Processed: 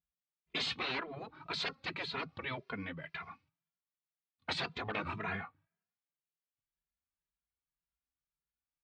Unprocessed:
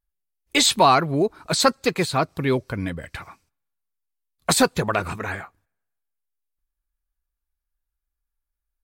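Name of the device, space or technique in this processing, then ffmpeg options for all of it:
barber-pole flanger into a guitar amplifier: -filter_complex "[0:a]asettb=1/sr,asplit=3[a][b][c];[a]atrim=end=2.444[d];[b]atrim=start=2.44:end=3.23,asetpts=PTS-STARTPTS,afade=t=in:d=0.004:c=qsin,afade=t=out:st=0.786:d=0.004:c=qsin,bass=f=250:g=-14,treble=f=4k:g=-1[e];[c]atrim=start=3.226[f];[d][e]acrossfade=d=0.004:c1=hsin:c2=qsin[g];[g][f]acrossfade=d=0.004:c1=qsin:c2=hsin,asplit=2[h][i];[i]adelay=2.5,afreqshift=1.9[j];[h][j]amix=inputs=2:normalize=1,asoftclip=type=tanh:threshold=-16.5dB,highpass=98,equalizer=f=160:t=q:w=4:g=9,equalizer=f=340:t=q:w=4:g=-5,equalizer=f=540:t=q:w=4:g=-8,equalizer=f=840:t=q:w=4:g=-3,equalizer=f=1.6k:t=q:w=4:g=-4,lowpass=f=3.6k:w=0.5412,lowpass=f=3.6k:w=1.3066,afftfilt=real='re*lt(hypot(re,im),0.126)':imag='im*lt(hypot(re,im),0.126)':win_size=1024:overlap=0.75,volume=-2dB"

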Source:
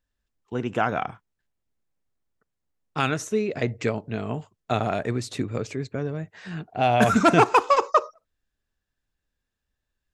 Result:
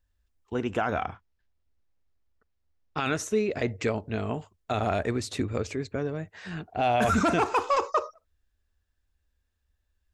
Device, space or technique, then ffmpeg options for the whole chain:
car stereo with a boomy subwoofer: -filter_complex "[0:a]lowshelf=f=100:t=q:w=3:g=6.5,alimiter=limit=-15.5dB:level=0:latency=1:release=12,asettb=1/sr,asplit=3[a][b][c];[a]atrim=end=1.074[d];[b]atrim=start=1.07:end=3.06,asetpts=PTS-STARTPTS,afade=t=in:d=0.004:c=qsin,afade=t=out:st=1.986:d=0.004:c=qsin,lowpass=f=5.9k:w=0.5412,lowpass=f=5.9k:w=1.3066[e];[c]atrim=start=3.056[f];[d][e]acrossfade=d=0.004:c1=hsin:c2=qsin[g];[g][f]acrossfade=d=0.004:c1=qsin:c2=hsin"

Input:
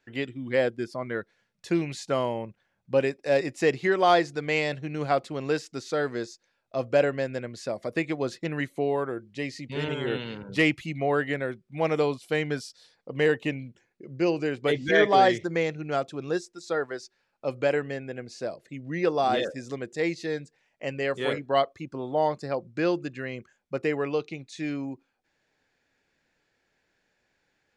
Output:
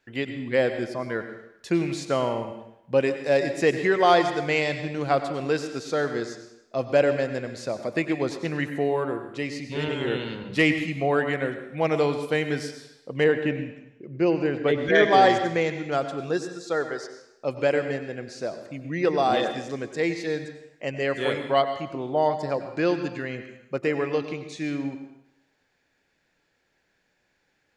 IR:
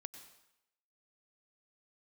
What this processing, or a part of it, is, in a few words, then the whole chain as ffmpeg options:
bathroom: -filter_complex "[1:a]atrim=start_sample=2205[a];[0:a][a]afir=irnorm=-1:irlink=0,asettb=1/sr,asplit=3[b][c][d];[b]atrim=end=13.244[e];[c]atrim=start=13.24:end=14.95,asetpts=PTS-STARTPTS,afade=t=in:d=0.004:c=qsin,afade=t=out:st=1.706:d=0.004:c=qsin,aemphasis=mode=reproduction:type=75fm[f];[d]atrim=start=14.946[g];[e][f]acrossfade=d=0.004:c1=hsin:c2=qsin[h];[h][g]acrossfade=d=0.004:c1=qsin:c2=hsin,volume=7dB"

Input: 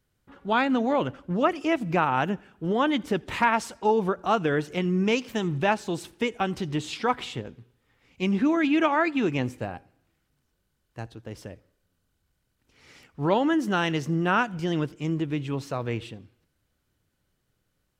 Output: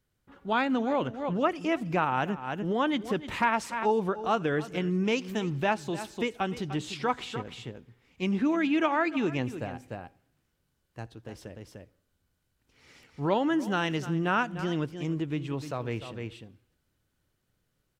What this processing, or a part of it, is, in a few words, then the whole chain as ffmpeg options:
ducked delay: -filter_complex "[0:a]asplit=3[a][b][c];[b]adelay=299,volume=-3dB[d];[c]apad=whole_len=806851[e];[d][e]sidechaincompress=threshold=-39dB:ratio=8:attack=29:release=198[f];[a][f]amix=inputs=2:normalize=0,volume=-3.5dB"

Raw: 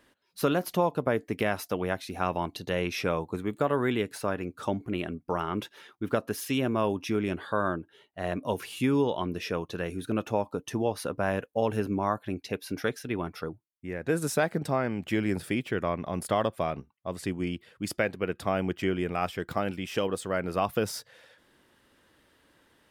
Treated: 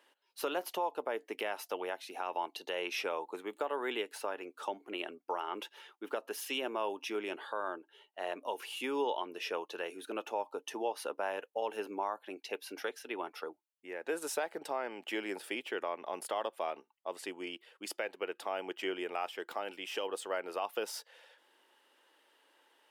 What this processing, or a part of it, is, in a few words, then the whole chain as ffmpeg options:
laptop speaker: -af "highpass=f=360:w=0.5412,highpass=f=360:w=1.3066,equalizer=f=870:t=o:w=0.25:g=8,equalizer=f=2.9k:t=o:w=0.31:g=6.5,alimiter=limit=-18.5dB:level=0:latency=1:release=207,volume=-5dB"

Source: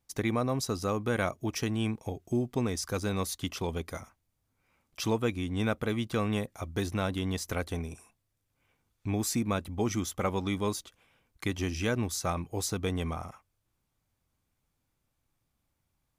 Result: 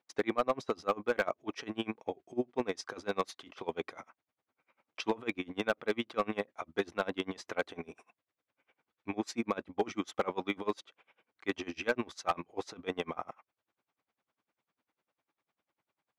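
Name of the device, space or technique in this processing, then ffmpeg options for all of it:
helicopter radio: -af "highpass=370,lowpass=2.8k,aeval=exprs='val(0)*pow(10,-27*(0.5-0.5*cos(2*PI*10*n/s))/20)':c=same,asoftclip=type=hard:threshold=-27.5dB,volume=7.5dB"

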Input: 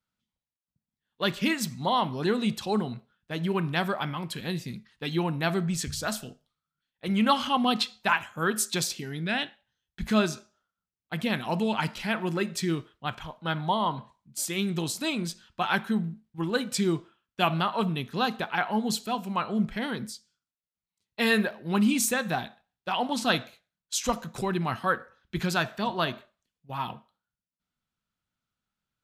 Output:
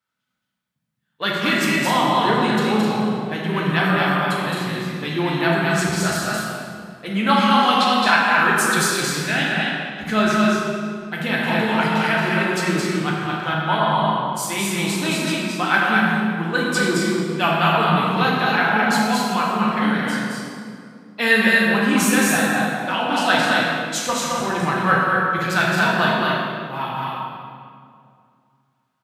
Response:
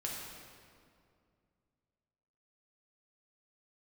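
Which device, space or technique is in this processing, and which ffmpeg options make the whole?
stadium PA: -filter_complex "[0:a]highpass=150,equalizer=f=1.6k:t=o:w=1.3:g=6,aecho=1:1:218.7|256.6:0.708|0.501[a];[1:a]atrim=start_sample=2205[b];[a][b]afir=irnorm=-1:irlink=0,volume=4dB"

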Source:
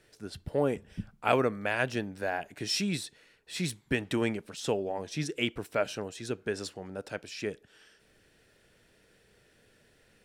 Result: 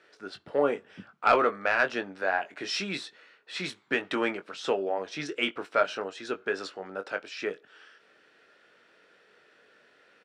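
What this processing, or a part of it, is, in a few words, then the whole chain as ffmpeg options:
intercom: -filter_complex "[0:a]highpass=360,lowpass=4.1k,equalizer=f=1.3k:t=o:w=0.51:g=8,asoftclip=type=tanh:threshold=-14dB,asplit=2[a][b];[b]adelay=21,volume=-8.5dB[c];[a][c]amix=inputs=2:normalize=0,volume=3.5dB"

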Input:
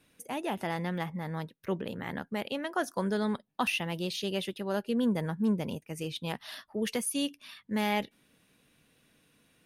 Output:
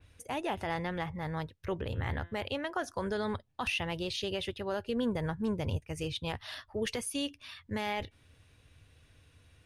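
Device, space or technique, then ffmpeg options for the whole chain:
car stereo with a boomy subwoofer: -filter_complex "[0:a]lowpass=8.6k,asplit=3[a][b][c];[a]afade=t=out:st=1.91:d=0.02[d];[b]bandreject=f=171:t=h:w=4,bandreject=f=342:t=h:w=4,bandreject=f=513:t=h:w=4,bandreject=f=684:t=h:w=4,bandreject=f=855:t=h:w=4,bandreject=f=1.026k:t=h:w=4,bandreject=f=1.197k:t=h:w=4,bandreject=f=1.368k:t=h:w=4,bandreject=f=1.539k:t=h:w=4,bandreject=f=1.71k:t=h:w=4,bandreject=f=1.881k:t=h:w=4,bandreject=f=2.052k:t=h:w=4,bandreject=f=2.223k:t=h:w=4,bandreject=f=2.394k:t=h:w=4,bandreject=f=2.565k:t=h:w=4,bandreject=f=2.736k:t=h:w=4,bandreject=f=2.907k:t=h:w=4,bandreject=f=3.078k:t=h:w=4,bandreject=f=3.249k:t=h:w=4,bandreject=f=3.42k:t=h:w=4,bandreject=f=3.591k:t=h:w=4,bandreject=f=3.762k:t=h:w=4,bandreject=f=3.933k:t=h:w=4,afade=t=in:st=1.91:d=0.02,afade=t=out:st=2.44:d=0.02[e];[c]afade=t=in:st=2.44:d=0.02[f];[d][e][f]amix=inputs=3:normalize=0,lowshelf=f=130:t=q:w=3:g=13,alimiter=level_in=0.5dB:limit=-24dB:level=0:latency=1:release=46,volume=-0.5dB,adynamicequalizer=threshold=0.00355:dfrequency=4000:dqfactor=0.7:tfrequency=4000:tqfactor=0.7:attack=5:release=100:ratio=0.375:range=2:mode=cutabove:tftype=highshelf,volume=1.5dB"

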